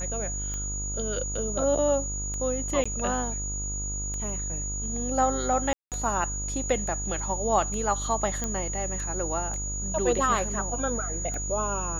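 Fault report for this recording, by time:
buzz 50 Hz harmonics 30 -34 dBFS
tick 33 1/3 rpm -22 dBFS
tone 6800 Hz -32 dBFS
2.84–2.85 gap 15 ms
5.73–5.92 gap 0.188 s
8.44 pop -15 dBFS

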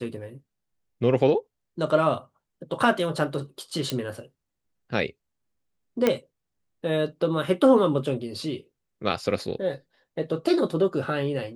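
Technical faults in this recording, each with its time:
3.9 pop -12 dBFS
6.07 pop -8 dBFS

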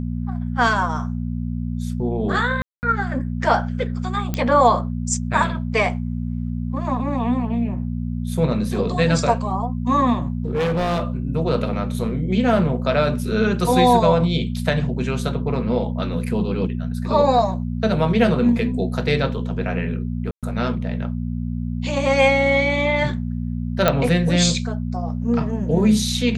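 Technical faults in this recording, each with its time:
hum 60 Hz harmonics 4 -25 dBFS
2.62–2.83 gap 0.209 s
4.34 pop -9 dBFS
10.45–11.04 clipped -17.5 dBFS
20.31–20.43 gap 0.117 s
23.88 pop -2 dBFS

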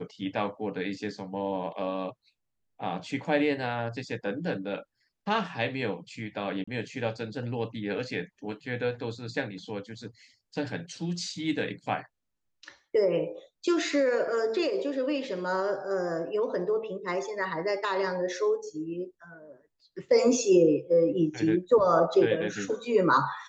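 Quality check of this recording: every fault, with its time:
6.64–6.67 gap 35 ms

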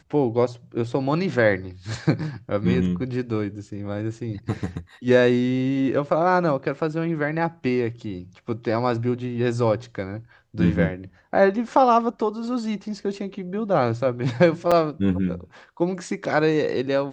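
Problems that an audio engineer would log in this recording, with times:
14.71–14.72 gap 5.5 ms

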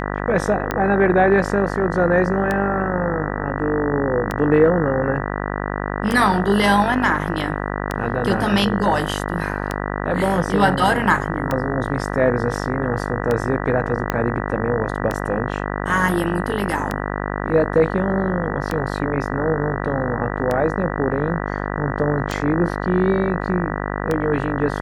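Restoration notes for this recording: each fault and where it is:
buzz 50 Hz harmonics 39 -25 dBFS
tick 33 1/3 rpm -8 dBFS
14.1 pop -6 dBFS

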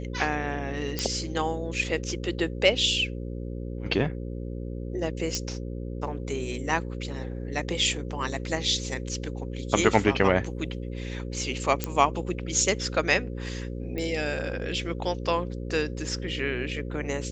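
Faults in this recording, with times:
buzz 60 Hz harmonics 9 -34 dBFS
0.99 pop -11 dBFS
5.35 pop -13 dBFS
11.84 pop -10 dBFS
13.98 pop -20 dBFS

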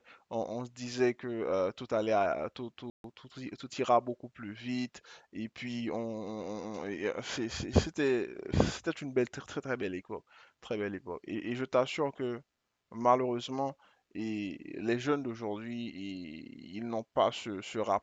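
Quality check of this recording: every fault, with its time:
2.9–3.04 gap 0.142 s

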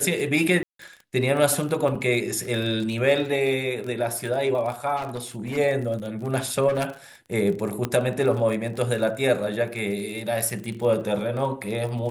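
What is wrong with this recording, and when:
crackle 30/s -30 dBFS
0.63–0.79 gap 0.163 s
1.95 gap 3.8 ms
4.96–5.58 clipped -26 dBFS
6.68–6.85 clipped -20 dBFS
7.85 pop -11 dBFS

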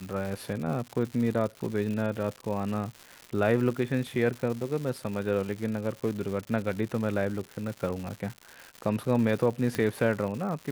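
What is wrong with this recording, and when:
crackle 240/s -34 dBFS
9.75 pop -15 dBFS

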